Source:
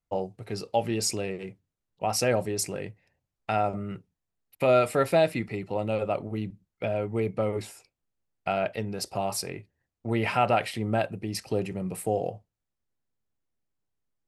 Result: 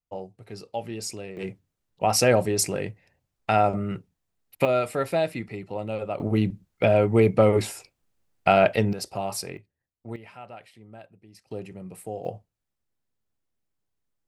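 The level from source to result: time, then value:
−6 dB
from 0:01.37 +5.5 dB
from 0:04.65 −2.5 dB
from 0:06.20 +9.5 dB
from 0:08.93 −0.5 dB
from 0:09.57 −7.5 dB
from 0:10.16 −19.5 dB
from 0:11.51 −7.5 dB
from 0:12.25 +1.5 dB

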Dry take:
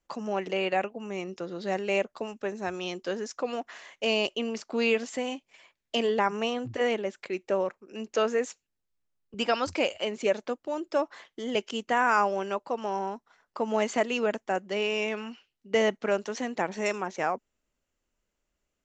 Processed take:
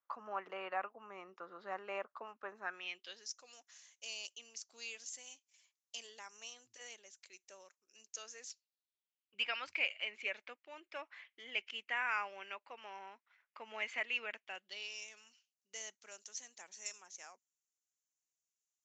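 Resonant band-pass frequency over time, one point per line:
resonant band-pass, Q 3.5
0:02.59 1,200 Hz
0:03.36 6,300 Hz
0:08.22 6,300 Hz
0:09.51 2,300 Hz
0:14.37 2,300 Hz
0:15.07 6,500 Hz

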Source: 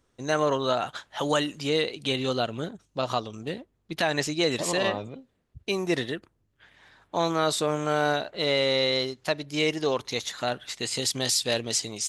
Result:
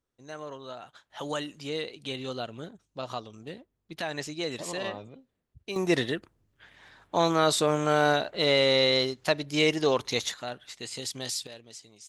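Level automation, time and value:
−16 dB
from 0:01.10 −8 dB
from 0:05.76 +1.5 dB
from 0:10.34 −8 dB
from 0:11.47 −19.5 dB

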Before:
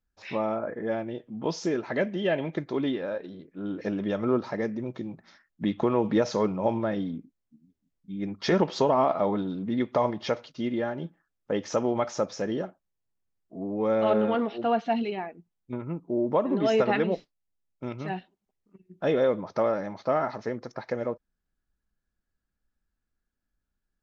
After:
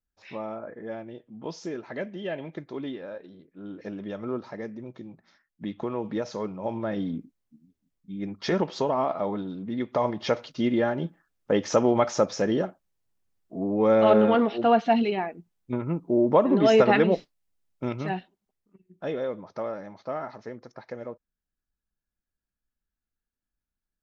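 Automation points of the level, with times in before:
0:06.60 −6.5 dB
0:07.17 +3.5 dB
0:08.77 −3 dB
0:09.78 −3 dB
0:10.51 +5 dB
0:17.88 +5 dB
0:19.21 −7 dB

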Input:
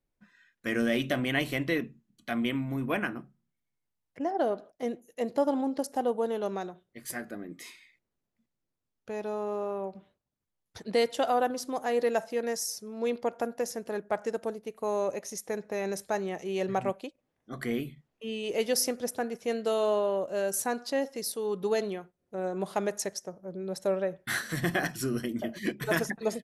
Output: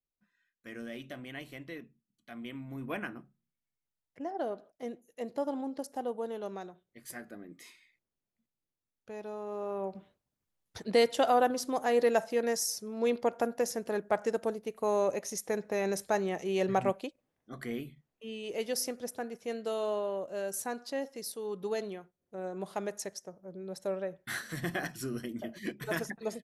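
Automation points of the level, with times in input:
0:02.31 −15 dB
0:02.91 −7 dB
0:09.44 −7 dB
0:09.93 +1 dB
0:17.05 +1 dB
0:17.64 −6 dB

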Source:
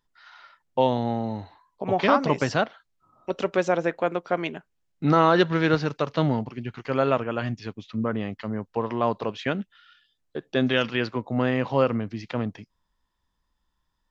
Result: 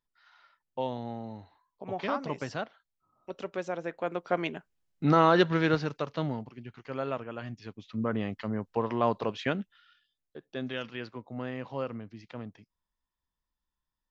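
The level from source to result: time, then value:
0:03.82 −11.5 dB
0:04.34 −3 dB
0:05.53 −3 dB
0:06.50 −11 dB
0:07.48 −11 dB
0:08.17 −2.5 dB
0:09.44 −2.5 dB
0:10.37 −13 dB

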